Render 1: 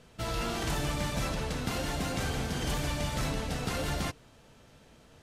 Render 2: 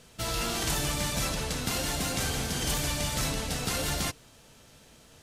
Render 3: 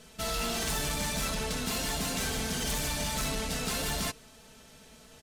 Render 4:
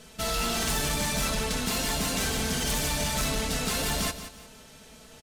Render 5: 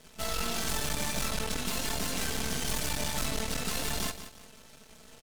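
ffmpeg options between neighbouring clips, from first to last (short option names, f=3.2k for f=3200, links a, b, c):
-af "highshelf=f=3.7k:g=11.5"
-af "aecho=1:1:4.6:0.58,asoftclip=type=tanh:threshold=-26.5dB"
-af "aecho=1:1:176|352|528:0.251|0.0779|0.0241,volume=3.5dB"
-af "aeval=exprs='max(val(0),0)':c=same"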